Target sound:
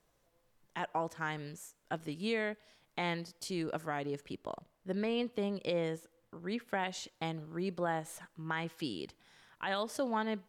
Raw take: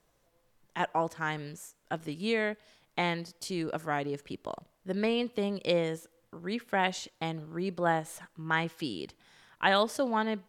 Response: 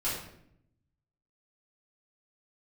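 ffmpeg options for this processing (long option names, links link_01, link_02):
-filter_complex "[0:a]asettb=1/sr,asplit=3[link_01][link_02][link_03];[link_01]atrim=end=4.364[link_04];[link_02]atrim=start=4.36:end=6.67,asetpts=PTS-STARTPTS,afade=type=in:duration=0.004:curve=qsin,afade=type=out:start_time=2.306:duration=0.004:curve=qsin,highshelf=frequency=3400:gain=-4[link_05];[link_03]atrim=start=6.666[link_06];[link_04][link_05]acrossfade=duration=0.004:curve1=hsin:curve2=qsin[link_07];[link_07][link_06]acrossfade=duration=0.004:curve1=qsin:curve2=hsin,alimiter=limit=-20.5dB:level=0:latency=1:release=156,volume=-3dB"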